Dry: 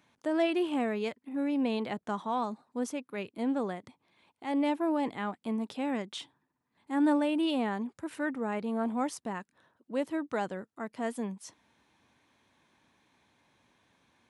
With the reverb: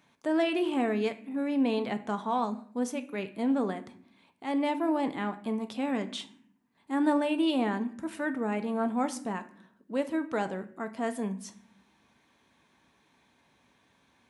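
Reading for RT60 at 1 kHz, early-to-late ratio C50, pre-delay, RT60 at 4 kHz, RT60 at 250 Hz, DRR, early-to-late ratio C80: 0.50 s, 15.0 dB, 4 ms, 0.40 s, 1.1 s, 8.0 dB, 18.5 dB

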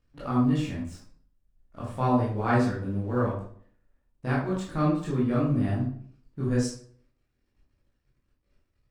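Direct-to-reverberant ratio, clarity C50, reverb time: −8.0 dB, 3.5 dB, 0.55 s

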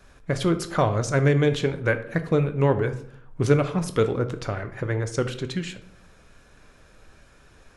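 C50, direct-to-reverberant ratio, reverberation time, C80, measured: 12.5 dB, 8.0 dB, 0.65 s, 16.0 dB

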